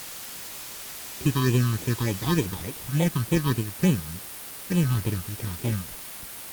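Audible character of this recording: aliases and images of a low sample rate 1.4 kHz, jitter 0%; phasing stages 6, 3.4 Hz, lowest notch 540–1400 Hz; a quantiser's noise floor 6-bit, dither triangular; Opus

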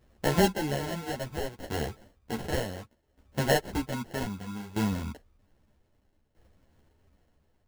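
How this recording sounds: tremolo saw down 0.63 Hz, depth 80%; aliases and images of a low sample rate 1.2 kHz, jitter 0%; a shimmering, thickened sound

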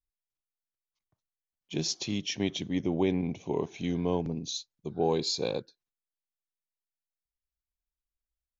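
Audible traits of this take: noise floor -93 dBFS; spectral tilt -5.0 dB/octave

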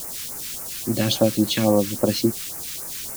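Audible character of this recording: a quantiser's noise floor 6-bit, dither triangular; phasing stages 2, 3.6 Hz, lowest notch 620–3300 Hz

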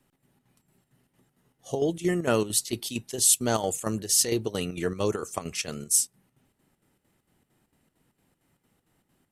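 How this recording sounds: chopped level 4.4 Hz, depth 60%, duty 70%

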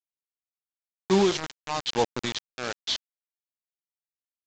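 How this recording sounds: tremolo triangle 1.1 Hz, depth 100%; a quantiser's noise floor 6-bit, dither none; µ-law

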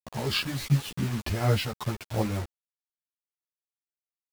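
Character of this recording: tremolo triangle 3.4 Hz, depth 80%; a quantiser's noise floor 8-bit, dither none; a shimmering, thickened sound

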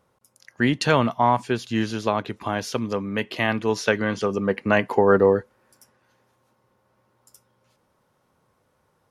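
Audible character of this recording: noise floor -68 dBFS; spectral tilt -4.5 dB/octave

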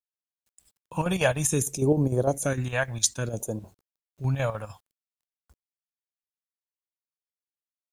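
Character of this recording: chopped level 6.6 Hz, depth 60%, duty 70%; phasing stages 2, 0.61 Hz, lowest notch 330–2500 Hz; a quantiser's noise floor 12-bit, dither none

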